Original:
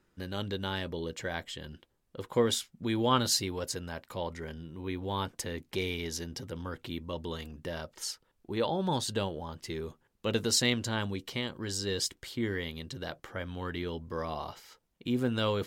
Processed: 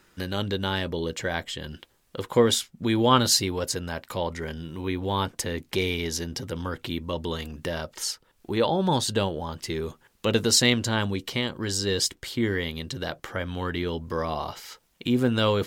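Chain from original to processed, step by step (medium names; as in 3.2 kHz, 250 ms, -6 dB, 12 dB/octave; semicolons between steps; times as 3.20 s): tape noise reduction on one side only encoder only; trim +7 dB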